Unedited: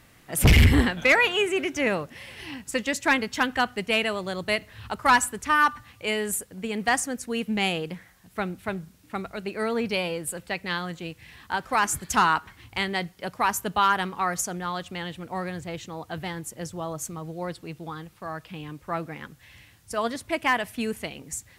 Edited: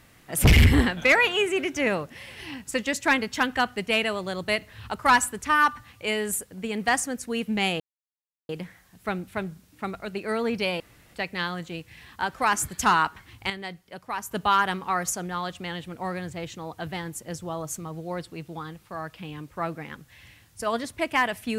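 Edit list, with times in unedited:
7.8 insert silence 0.69 s
10.11–10.45 room tone
12.81–13.62 gain -8 dB

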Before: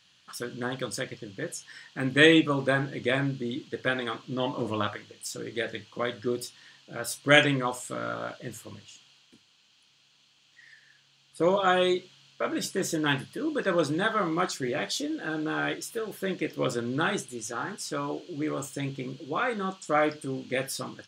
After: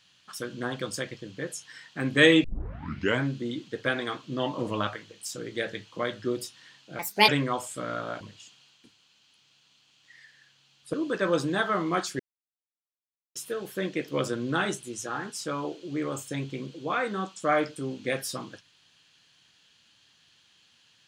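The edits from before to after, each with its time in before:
2.44 tape start 0.78 s
6.99–7.42 speed 146%
8.34–8.69 cut
11.42–13.39 cut
14.65–15.81 mute

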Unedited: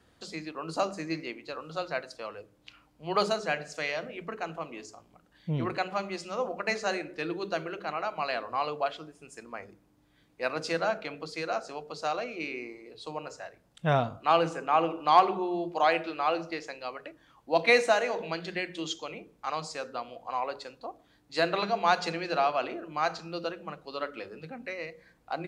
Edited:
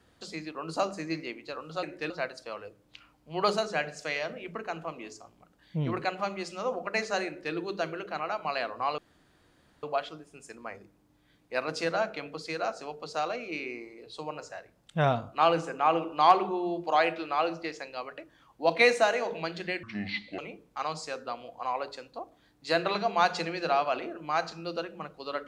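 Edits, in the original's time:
7–7.27 copy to 1.83
8.71 insert room tone 0.85 s
18.71–19.06 speed 63%

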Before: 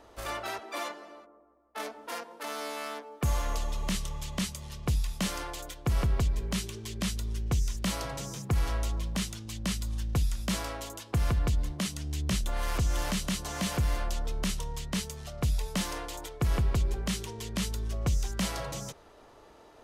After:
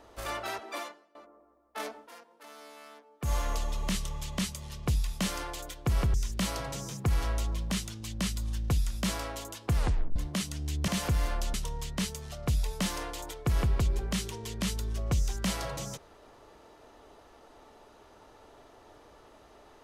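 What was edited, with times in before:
0.73–1.15 fade out quadratic, to -21 dB
1.95–3.33 dip -13 dB, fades 0.14 s
6.14–7.59 cut
11.21 tape stop 0.40 s
12.33–13.57 cut
14.23–14.49 cut

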